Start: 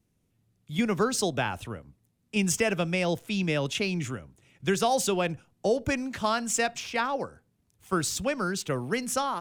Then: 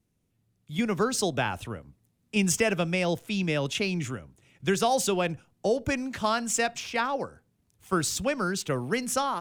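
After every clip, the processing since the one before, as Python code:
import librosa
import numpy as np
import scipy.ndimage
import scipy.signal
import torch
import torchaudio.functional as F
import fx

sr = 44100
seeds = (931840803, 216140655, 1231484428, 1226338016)

y = fx.rider(x, sr, range_db=10, speed_s=2.0)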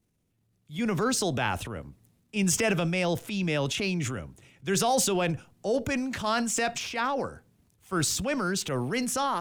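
y = fx.transient(x, sr, attack_db=-6, sustain_db=7)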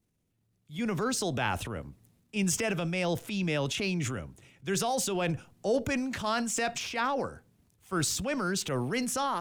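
y = fx.rider(x, sr, range_db=10, speed_s=0.5)
y = y * 10.0 ** (-2.5 / 20.0)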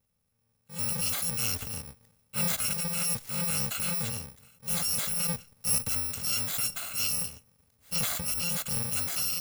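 y = fx.bit_reversed(x, sr, seeds[0], block=128)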